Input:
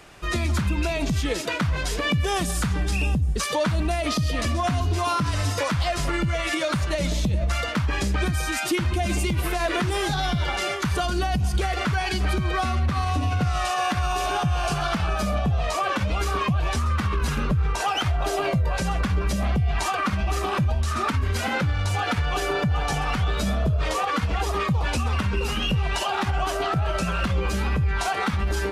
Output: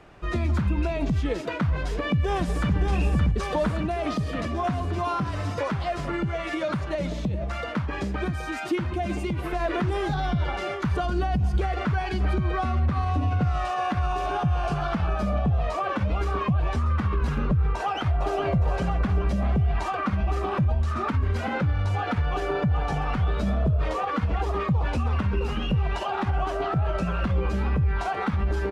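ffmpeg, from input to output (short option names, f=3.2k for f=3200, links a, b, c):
-filter_complex "[0:a]asplit=2[a][b];[b]afade=t=in:st=1.71:d=0.01,afade=t=out:st=2.74:d=0.01,aecho=0:1:570|1140|1710|2280|2850|3420|3990|4560|5130|5700|6270|6840:0.530884|0.398163|0.298622|0.223967|0.167975|0.125981|0.094486|0.0708645|0.0531484|0.0398613|0.029896|0.022422[c];[a][c]amix=inputs=2:normalize=0,asettb=1/sr,asplit=3[d][e][f];[d]atrim=end=3.684[g];[e]atrim=start=3.68:end=9.53,asetpts=PTS-STARTPTS,afade=t=in:d=0.004:c=qsin,afade=t=out:st=5.846:d=0.004:c=qsin,highpass=f=140:p=1[h];[f]atrim=start=9.526[i];[g][h]acrossfade=d=0.004:c1=hsin:c2=qsin[j];[j][i]acrossfade=d=0.004:c1=qsin:c2=hsin,asplit=2[k][l];[l]afade=t=in:st=17.79:d=0.01,afade=t=out:st=18.49:d=0.01,aecho=0:1:410|820|1230|1640|2050|2460:0.334965|0.184231|0.101327|0.0557299|0.0306514|0.0168583[m];[k][m]amix=inputs=2:normalize=0,lowpass=f=1.1k:p=1"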